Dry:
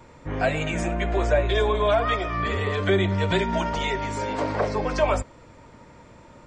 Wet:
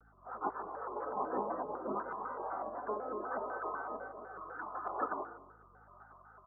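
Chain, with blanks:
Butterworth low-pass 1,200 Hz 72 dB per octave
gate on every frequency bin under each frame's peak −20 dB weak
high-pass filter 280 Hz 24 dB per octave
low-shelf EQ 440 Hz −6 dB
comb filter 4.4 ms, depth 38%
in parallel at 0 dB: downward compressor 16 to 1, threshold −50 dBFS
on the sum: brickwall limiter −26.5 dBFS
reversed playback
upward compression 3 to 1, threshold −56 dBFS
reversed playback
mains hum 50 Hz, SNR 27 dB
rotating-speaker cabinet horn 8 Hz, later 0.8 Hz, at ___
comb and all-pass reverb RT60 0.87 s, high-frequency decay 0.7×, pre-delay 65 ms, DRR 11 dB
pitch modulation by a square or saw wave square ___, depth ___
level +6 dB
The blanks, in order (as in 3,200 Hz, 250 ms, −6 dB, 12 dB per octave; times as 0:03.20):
0:00.73, 4 Hz, 160 cents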